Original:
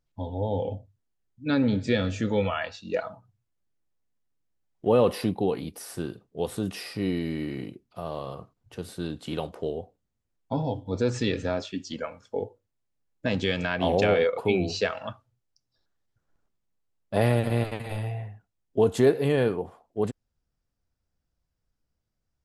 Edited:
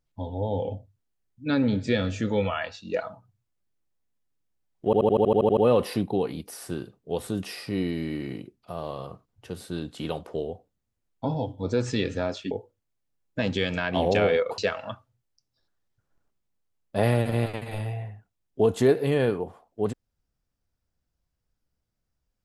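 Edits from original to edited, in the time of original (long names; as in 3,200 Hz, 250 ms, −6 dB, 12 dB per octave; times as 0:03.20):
0:04.85: stutter 0.08 s, 10 plays
0:11.79–0:12.38: remove
0:14.45–0:14.76: remove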